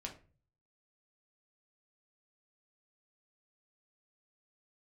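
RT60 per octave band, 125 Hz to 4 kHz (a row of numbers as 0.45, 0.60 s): 0.75, 0.50, 0.45, 0.35, 0.35, 0.25 s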